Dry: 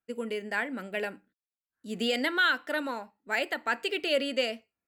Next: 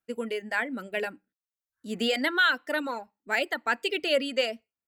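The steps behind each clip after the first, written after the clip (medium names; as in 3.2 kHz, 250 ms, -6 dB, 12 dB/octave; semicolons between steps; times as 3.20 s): reverb removal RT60 0.77 s; trim +2.5 dB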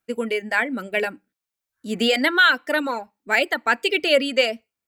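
small resonant body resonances 2.3 kHz, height 8 dB; trim +7 dB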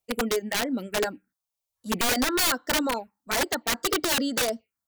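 touch-sensitive phaser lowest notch 260 Hz, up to 2.5 kHz, full sweep at -20 dBFS; integer overflow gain 18.5 dB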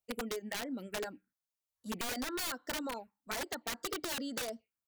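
compression, threshold -28 dBFS, peak gain reduction 7 dB; trim -7.5 dB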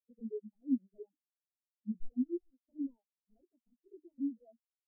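one-bit delta coder 16 kbps, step -54 dBFS; spectral contrast expander 4:1; trim +8.5 dB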